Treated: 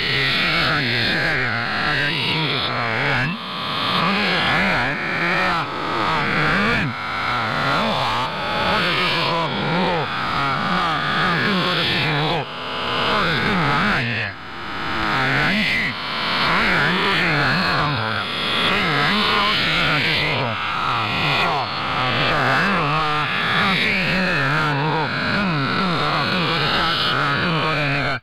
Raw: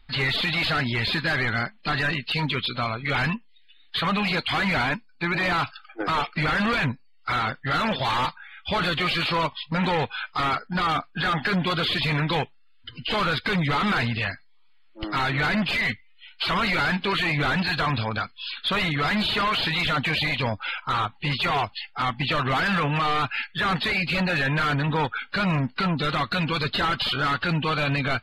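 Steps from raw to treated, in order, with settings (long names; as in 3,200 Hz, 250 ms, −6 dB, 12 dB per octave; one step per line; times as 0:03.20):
peak hold with a rise ahead of every peak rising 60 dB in 2.83 s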